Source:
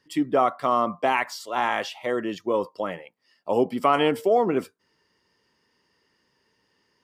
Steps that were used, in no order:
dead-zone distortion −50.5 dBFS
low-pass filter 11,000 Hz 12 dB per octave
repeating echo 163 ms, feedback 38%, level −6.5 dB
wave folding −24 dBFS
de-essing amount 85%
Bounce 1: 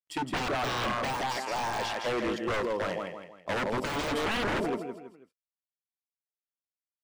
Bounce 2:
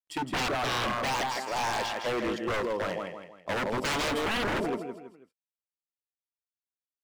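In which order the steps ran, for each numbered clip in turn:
dead-zone distortion, then repeating echo, then wave folding, then low-pass filter, then de-essing
dead-zone distortion, then low-pass filter, then de-essing, then repeating echo, then wave folding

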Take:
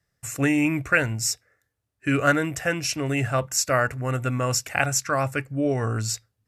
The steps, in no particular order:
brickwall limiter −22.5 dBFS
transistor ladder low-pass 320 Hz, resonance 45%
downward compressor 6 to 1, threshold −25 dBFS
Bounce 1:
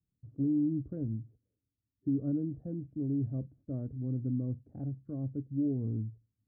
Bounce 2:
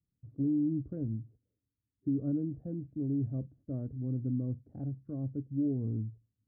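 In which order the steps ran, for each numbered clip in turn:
transistor ladder low-pass, then downward compressor, then brickwall limiter
transistor ladder low-pass, then brickwall limiter, then downward compressor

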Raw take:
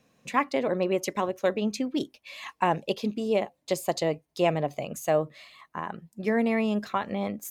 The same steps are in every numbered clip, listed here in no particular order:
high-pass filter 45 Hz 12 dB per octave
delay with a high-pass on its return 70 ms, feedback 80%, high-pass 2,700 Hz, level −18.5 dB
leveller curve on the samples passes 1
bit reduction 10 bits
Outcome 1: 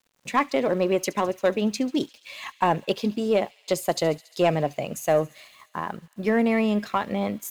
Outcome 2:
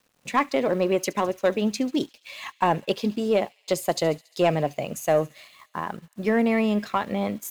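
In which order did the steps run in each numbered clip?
high-pass filter, then leveller curve on the samples, then bit reduction, then delay with a high-pass on its return
high-pass filter, then bit reduction, then delay with a high-pass on its return, then leveller curve on the samples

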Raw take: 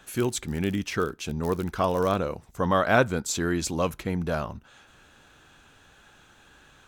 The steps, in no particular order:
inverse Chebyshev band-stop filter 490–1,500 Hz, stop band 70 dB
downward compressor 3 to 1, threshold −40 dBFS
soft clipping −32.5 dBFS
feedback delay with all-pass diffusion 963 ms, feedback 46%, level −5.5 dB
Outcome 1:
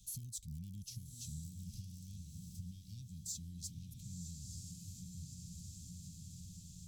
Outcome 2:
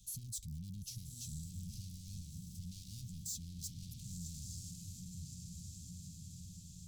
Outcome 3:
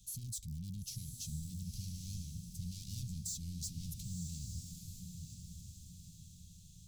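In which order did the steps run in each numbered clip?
feedback delay with all-pass diffusion, then downward compressor, then soft clipping, then inverse Chebyshev band-stop filter
feedback delay with all-pass diffusion, then soft clipping, then downward compressor, then inverse Chebyshev band-stop filter
soft clipping, then inverse Chebyshev band-stop filter, then downward compressor, then feedback delay with all-pass diffusion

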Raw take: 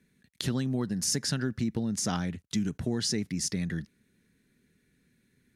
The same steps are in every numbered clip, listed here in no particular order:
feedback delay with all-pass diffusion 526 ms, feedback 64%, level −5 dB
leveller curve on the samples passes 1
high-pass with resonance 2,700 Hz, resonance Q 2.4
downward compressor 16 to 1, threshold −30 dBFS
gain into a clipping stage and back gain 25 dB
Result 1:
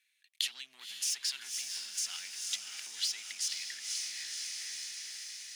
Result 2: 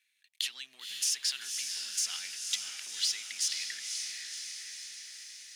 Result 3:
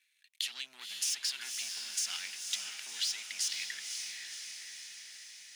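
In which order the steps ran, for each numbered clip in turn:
gain into a clipping stage and back, then feedback delay with all-pass diffusion, then leveller curve on the samples, then downward compressor, then high-pass with resonance
downward compressor, then gain into a clipping stage and back, then feedback delay with all-pass diffusion, then leveller curve on the samples, then high-pass with resonance
gain into a clipping stage and back, then leveller curve on the samples, then high-pass with resonance, then downward compressor, then feedback delay with all-pass diffusion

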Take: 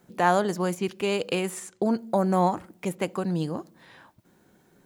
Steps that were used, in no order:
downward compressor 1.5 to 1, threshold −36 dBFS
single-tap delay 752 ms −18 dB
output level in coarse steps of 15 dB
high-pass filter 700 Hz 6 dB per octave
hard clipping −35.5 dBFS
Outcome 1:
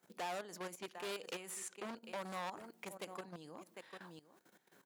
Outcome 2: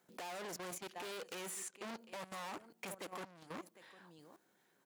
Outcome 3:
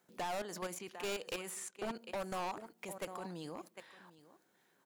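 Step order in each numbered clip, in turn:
single-tap delay, then downward compressor, then output level in coarse steps, then hard clipping, then high-pass filter
single-tap delay, then hard clipping, then downward compressor, then high-pass filter, then output level in coarse steps
high-pass filter, then output level in coarse steps, then single-tap delay, then hard clipping, then downward compressor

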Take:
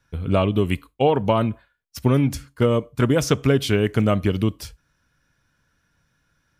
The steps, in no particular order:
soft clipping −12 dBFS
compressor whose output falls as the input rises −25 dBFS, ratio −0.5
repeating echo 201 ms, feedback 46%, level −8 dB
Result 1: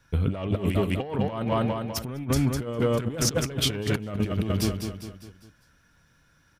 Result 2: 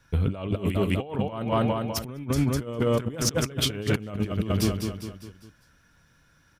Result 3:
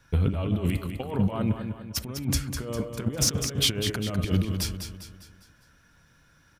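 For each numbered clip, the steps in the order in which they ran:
soft clipping, then repeating echo, then compressor whose output falls as the input rises
repeating echo, then compressor whose output falls as the input rises, then soft clipping
compressor whose output falls as the input rises, then soft clipping, then repeating echo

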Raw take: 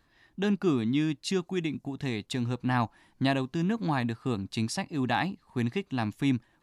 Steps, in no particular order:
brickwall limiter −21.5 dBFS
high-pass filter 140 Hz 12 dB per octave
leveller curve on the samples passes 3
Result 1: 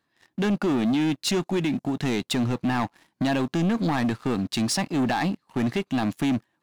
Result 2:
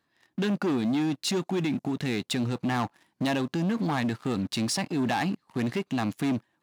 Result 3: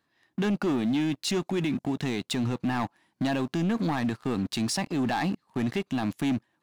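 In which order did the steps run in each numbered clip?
brickwall limiter, then high-pass filter, then leveller curve on the samples
leveller curve on the samples, then brickwall limiter, then high-pass filter
high-pass filter, then leveller curve on the samples, then brickwall limiter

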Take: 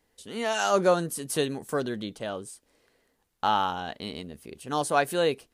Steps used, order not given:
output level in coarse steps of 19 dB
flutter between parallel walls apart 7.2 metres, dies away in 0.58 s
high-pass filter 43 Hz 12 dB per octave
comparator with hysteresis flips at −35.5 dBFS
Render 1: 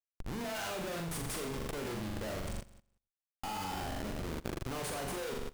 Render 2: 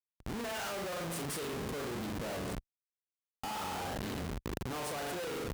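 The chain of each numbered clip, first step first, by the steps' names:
high-pass filter, then comparator with hysteresis, then flutter between parallel walls, then output level in coarse steps
flutter between parallel walls, then comparator with hysteresis, then high-pass filter, then output level in coarse steps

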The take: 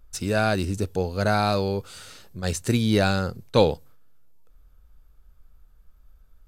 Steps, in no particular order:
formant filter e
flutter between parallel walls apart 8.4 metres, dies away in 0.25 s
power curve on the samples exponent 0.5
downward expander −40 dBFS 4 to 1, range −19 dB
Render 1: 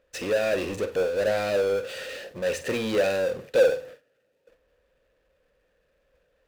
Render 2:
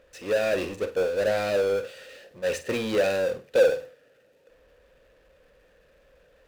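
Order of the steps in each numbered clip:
formant filter, then power curve on the samples, then flutter between parallel walls, then downward expander
formant filter, then downward expander, then power curve on the samples, then flutter between parallel walls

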